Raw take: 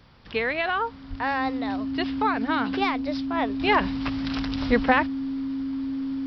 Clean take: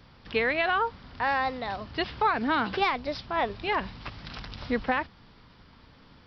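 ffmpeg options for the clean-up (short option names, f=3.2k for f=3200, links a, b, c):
-filter_complex "[0:a]bandreject=f=270:w=30,asplit=3[a][b][c];[a]afade=t=out:st=1.09:d=0.02[d];[b]highpass=f=140:w=0.5412,highpass=f=140:w=1.3066,afade=t=in:st=1.09:d=0.02,afade=t=out:st=1.21:d=0.02[e];[c]afade=t=in:st=1.21:d=0.02[f];[d][e][f]amix=inputs=3:normalize=0,asplit=3[g][h][i];[g]afade=t=out:st=4.67:d=0.02[j];[h]highpass=f=140:w=0.5412,highpass=f=140:w=1.3066,afade=t=in:st=4.67:d=0.02,afade=t=out:st=4.79:d=0.02[k];[i]afade=t=in:st=4.79:d=0.02[l];[j][k][l]amix=inputs=3:normalize=0,asetnsamples=n=441:p=0,asendcmd='3.6 volume volume -7dB',volume=0dB"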